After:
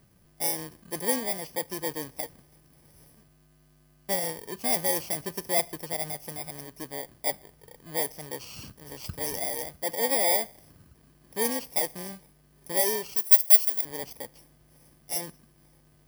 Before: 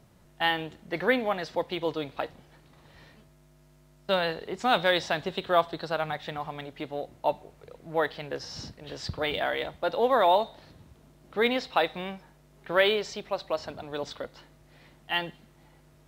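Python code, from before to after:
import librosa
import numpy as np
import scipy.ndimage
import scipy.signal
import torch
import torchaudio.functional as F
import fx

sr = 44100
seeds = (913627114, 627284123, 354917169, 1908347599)

y = fx.bit_reversed(x, sr, seeds[0], block=32)
y = fx.riaa(y, sr, side='recording', at=(13.16, 13.85))
y = y * 10.0 ** (-2.5 / 20.0)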